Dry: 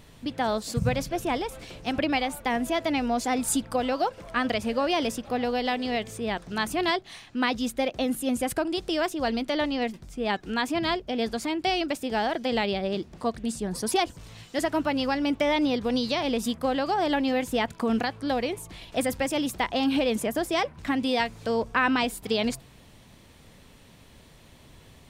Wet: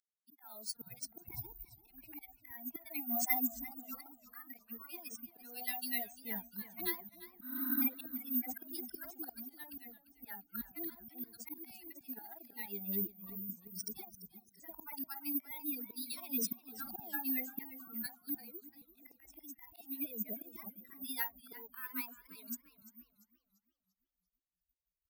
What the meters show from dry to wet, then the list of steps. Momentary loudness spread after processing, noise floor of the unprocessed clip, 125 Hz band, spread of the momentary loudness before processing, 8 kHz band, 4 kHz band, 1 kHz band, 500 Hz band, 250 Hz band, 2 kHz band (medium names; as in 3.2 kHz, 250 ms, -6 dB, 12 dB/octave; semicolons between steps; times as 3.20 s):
17 LU, -53 dBFS, -20.0 dB, 6 LU, -10.5 dB, -20.5 dB, -23.0 dB, -27.5 dB, -18.0 dB, -17.5 dB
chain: expander on every frequency bin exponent 3; high-pass 45 Hz; spectral replace 7.45–7.80 s, 240–10000 Hz before; peaking EQ 3.4 kHz +14 dB 1.1 oct; compression 12:1, threshold -34 dBFS, peak gain reduction 16 dB; slow attack 520 ms; static phaser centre 1.3 kHz, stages 4; three bands offset in time highs, mids, lows 50/520 ms, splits 160/930 Hz; careless resampling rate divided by 3×, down filtered, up zero stuff; modulated delay 343 ms, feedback 39%, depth 103 cents, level -15.5 dB; trim +8 dB